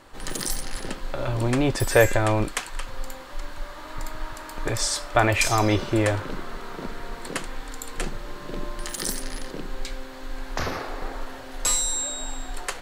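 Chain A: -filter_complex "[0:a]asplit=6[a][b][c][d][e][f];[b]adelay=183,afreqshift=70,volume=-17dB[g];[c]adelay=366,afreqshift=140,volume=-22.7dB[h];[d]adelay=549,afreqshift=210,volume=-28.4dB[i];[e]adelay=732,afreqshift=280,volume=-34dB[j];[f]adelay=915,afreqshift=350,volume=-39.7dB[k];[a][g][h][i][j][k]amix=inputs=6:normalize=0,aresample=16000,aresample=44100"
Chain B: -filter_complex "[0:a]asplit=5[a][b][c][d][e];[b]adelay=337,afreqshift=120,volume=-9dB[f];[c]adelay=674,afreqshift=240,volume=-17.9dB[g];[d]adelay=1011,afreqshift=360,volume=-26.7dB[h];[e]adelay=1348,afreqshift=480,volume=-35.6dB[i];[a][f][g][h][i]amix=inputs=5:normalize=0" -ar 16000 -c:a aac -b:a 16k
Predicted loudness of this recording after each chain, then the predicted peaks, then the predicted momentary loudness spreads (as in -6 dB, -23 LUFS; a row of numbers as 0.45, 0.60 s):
-27.0, -27.0 LUFS; -3.5, -4.0 dBFS; 17, 15 LU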